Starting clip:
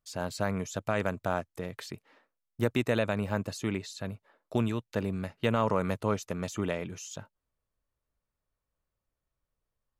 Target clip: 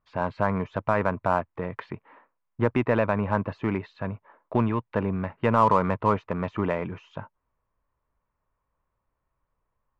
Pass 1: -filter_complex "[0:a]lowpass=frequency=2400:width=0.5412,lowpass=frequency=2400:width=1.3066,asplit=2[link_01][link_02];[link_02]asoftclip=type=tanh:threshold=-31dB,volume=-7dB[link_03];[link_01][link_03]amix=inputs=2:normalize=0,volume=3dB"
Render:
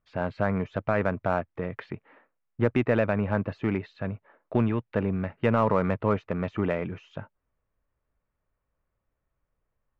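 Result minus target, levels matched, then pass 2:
1,000 Hz band −5.0 dB
-filter_complex "[0:a]lowpass=frequency=2400:width=0.5412,lowpass=frequency=2400:width=1.3066,equalizer=frequency=1000:width=3.2:gain=10.5,asplit=2[link_01][link_02];[link_02]asoftclip=type=tanh:threshold=-31dB,volume=-7dB[link_03];[link_01][link_03]amix=inputs=2:normalize=0,volume=3dB"

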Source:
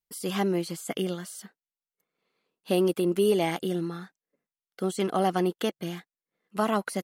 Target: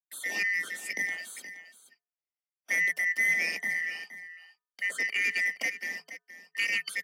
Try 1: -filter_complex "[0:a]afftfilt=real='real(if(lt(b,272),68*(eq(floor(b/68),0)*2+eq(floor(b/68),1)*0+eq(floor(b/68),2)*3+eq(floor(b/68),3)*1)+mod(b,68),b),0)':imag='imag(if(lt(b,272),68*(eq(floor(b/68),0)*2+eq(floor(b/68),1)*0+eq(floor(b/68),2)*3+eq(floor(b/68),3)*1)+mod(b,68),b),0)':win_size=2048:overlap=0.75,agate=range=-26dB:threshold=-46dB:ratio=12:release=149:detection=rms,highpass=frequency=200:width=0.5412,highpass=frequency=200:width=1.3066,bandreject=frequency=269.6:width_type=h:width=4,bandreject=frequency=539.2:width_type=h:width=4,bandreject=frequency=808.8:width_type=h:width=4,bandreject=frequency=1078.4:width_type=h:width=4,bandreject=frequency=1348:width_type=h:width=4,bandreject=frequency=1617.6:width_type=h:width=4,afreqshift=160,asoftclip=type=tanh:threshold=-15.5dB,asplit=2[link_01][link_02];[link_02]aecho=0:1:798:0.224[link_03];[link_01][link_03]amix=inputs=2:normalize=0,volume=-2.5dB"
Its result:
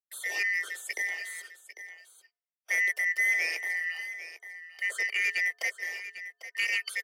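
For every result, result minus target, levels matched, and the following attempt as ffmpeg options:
echo 326 ms late; 250 Hz band −10.5 dB
-filter_complex "[0:a]afftfilt=real='real(if(lt(b,272),68*(eq(floor(b/68),0)*2+eq(floor(b/68),1)*0+eq(floor(b/68),2)*3+eq(floor(b/68),3)*1)+mod(b,68),b),0)':imag='imag(if(lt(b,272),68*(eq(floor(b/68),0)*2+eq(floor(b/68),1)*0+eq(floor(b/68),2)*3+eq(floor(b/68),3)*1)+mod(b,68),b),0)':win_size=2048:overlap=0.75,agate=range=-26dB:threshold=-46dB:ratio=12:release=149:detection=rms,highpass=frequency=200:width=0.5412,highpass=frequency=200:width=1.3066,bandreject=frequency=269.6:width_type=h:width=4,bandreject=frequency=539.2:width_type=h:width=4,bandreject=frequency=808.8:width_type=h:width=4,bandreject=frequency=1078.4:width_type=h:width=4,bandreject=frequency=1348:width_type=h:width=4,bandreject=frequency=1617.6:width_type=h:width=4,afreqshift=160,asoftclip=type=tanh:threshold=-15.5dB,asplit=2[link_01][link_02];[link_02]aecho=0:1:472:0.224[link_03];[link_01][link_03]amix=inputs=2:normalize=0,volume=-2.5dB"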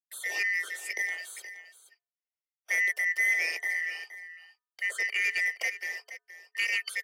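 250 Hz band −11.0 dB
-filter_complex "[0:a]afftfilt=real='real(if(lt(b,272),68*(eq(floor(b/68),0)*2+eq(floor(b/68),1)*0+eq(floor(b/68),2)*3+eq(floor(b/68),3)*1)+mod(b,68),b),0)':imag='imag(if(lt(b,272),68*(eq(floor(b/68),0)*2+eq(floor(b/68),1)*0+eq(floor(b/68),2)*3+eq(floor(b/68),3)*1)+mod(b,68),b),0)':win_size=2048:overlap=0.75,agate=range=-26dB:threshold=-46dB:ratio=12:release=149:detection=rms,bandreject=frequency=269.6:width_type=h:width=4,bandreject=frequency=539.2:width_type=h:width=4,bandreject=frequency=808.8:width_type=h:width=4,bandreject=frequency=1078.4:width_type=h:width=4,bandreject=frequency=1348:width_type=h:width=4,bandreject=frequency=1617.6:width_type=h:width=4,afreqshift=160,asoftclip=type=tanh:threshold=-15.5dB,asplit=2[link_01][link_02];[link_02]aecho=0:1:472:0.224[link_03];[link_01][link_03]amix=inputs=2:normalize=0,volume=-2.5dB"

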